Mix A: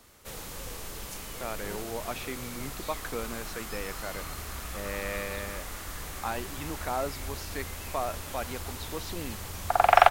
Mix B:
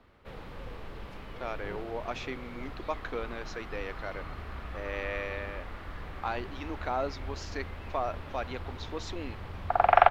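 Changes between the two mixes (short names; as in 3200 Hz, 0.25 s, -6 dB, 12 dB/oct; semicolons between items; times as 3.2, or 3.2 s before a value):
speech: add brick-wall FIR high-pass 230 Hz; background: add air absorption 400 m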